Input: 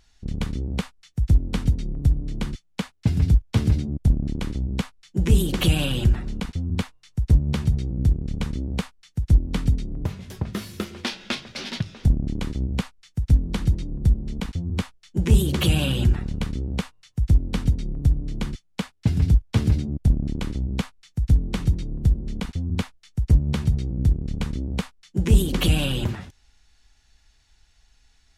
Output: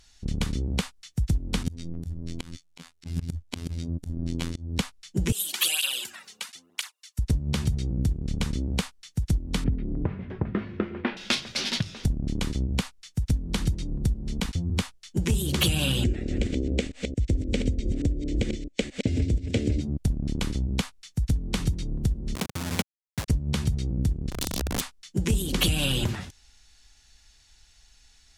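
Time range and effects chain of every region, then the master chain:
1.63–4.79 robotiser 83.8 Hz + bell 280 Hz +6.5 dB 0.23 oct + auto swell 0.206 s
5.32–7.19 HPF 1100 Hz + high shelf 10000 Hz +9.5 dB + tape flanging out of phase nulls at 1 Hz, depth 3.5 ms
9.64–11.17 LPF 2100 Hz 24 dB/oct + bell 310 Hz +6 dB 1.4 oct
16.04–19.81 reverse delay 0.22 s, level -7 dB + EQ curve 100 Hz 0 dB, 160 Hz -6 dB, 270 Hz +9 dB, 580 Hz +9 dB, 1000 Hz -18 dB, 2100 Hz +3 dB, 4900 Hz -5 dB, 7900 Hz -1 dB, 11000 Hz -20 dB
22.35–23.28 level-crossing sampler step -26 dBFS + HPF 130 Hz
24.3–24.81 Chebyshev band-stop 130–3300 Hz, order 4 + wrapped overs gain 24.5 dB + three-band expander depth 70%
whole clip: compressor 6:1, threshold -21 dBFS; bell 8000 Hz +8 dB 2.7 oct

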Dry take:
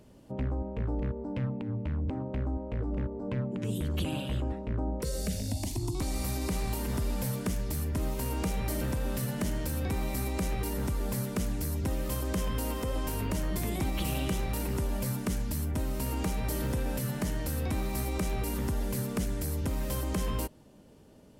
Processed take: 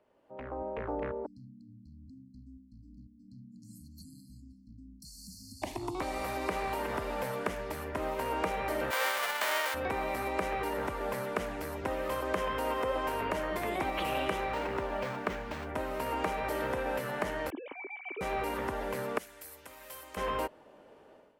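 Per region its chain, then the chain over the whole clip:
1.26–5.62 brick-wall FIR band-stop 280–4100 Hz + low shelf 430 Hz -9 dB
8.9–9.73 spectral whitening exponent 0.1 + HPF 350 Hz + notch 2600 Hz, Q 22
14.52–15.69 median filter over 3 samples + running maximum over 3 samples
17.5–18.21 sine-wave speech + vocal tract filter i + bell 1000 Hz +7.5 dB 0.7 oct
19.18–20.17 pre-emphasis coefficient 0.9 + notches 50/100/150/200/250/300/350/400/450 Hz
whole clip: three-band isolator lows -22 dB, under 420 Hz, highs -19 dB, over 2600 Hz; AGC gain up to 15 dB; gain -6.5 dB

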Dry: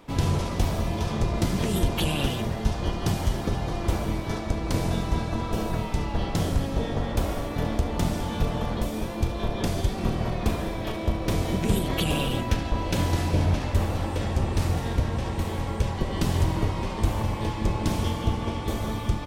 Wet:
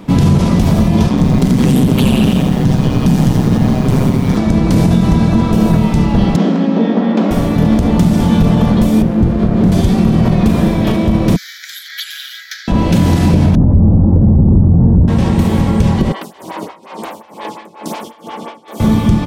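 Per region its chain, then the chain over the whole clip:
1.09–4.37 ring modulator 65 Hz + lo-fi delay 84 ms, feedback 55%, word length 8-bit, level -5.5 dB
6.36–7.31 brick-wall FIR high-pass 180 Hz + air absorption 190 m
9.02–9.72 high shelf 2300 Hz -12 dB + running maximum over 17 samples
11.36–12.68 steep high-pass 1500 Hz 72 dB/oct + fixed phaser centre 2700 Hz, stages 6
13.55–15.08 Bessel low-pass 640 Hz, order 4 + low shelf 240 Hz +11.5 dB
16.12–18.8 HPF 600 Hz + tremolo 2.2 Hz, depth 88% + photocell phaser 5.6 Hz
whole clip: bell 190 Hz +14 dB 1.2 oct; maximiser +12.5 dB; gain -1 dB

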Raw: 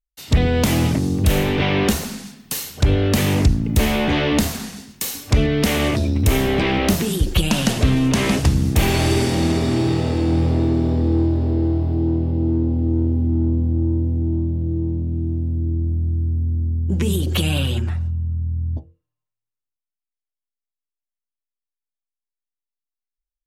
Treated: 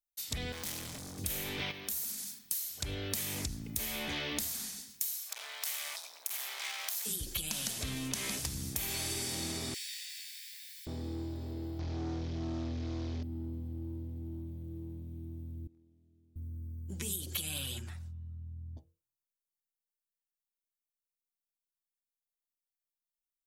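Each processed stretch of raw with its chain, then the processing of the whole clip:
0.52–1.18 block floating point 7-bit + high shelf 9500 Hz -8.5 dB + overloaded stage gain 24.5 dB
1.71–2.39 high shelf 8900 Hz +10 dB + compressor 2.5:1, threshold -31 dBFS
5.14–7.06 overloaded stage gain 20.5 dB + HPF 720 Hz 24 dB/oct
9.74–10.87 block floating point 7-bit + steep high-pass 1700 Hz 72 dB/oct
11.79–13.23 delta modulation 32 kbps, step -34 dBFS + sample leveller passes 2 + air absorption 170 m
15.67–16.36 Bessel high-pass 230 Hz + air absorption 56 m + gate -28 dBFS, range -13 dB
whole clip: pre-emphasis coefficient 0.9; notch 2800 Hz, Q 16; compressor 6:1, threshold -31 dBFS; gain -1.5 dB

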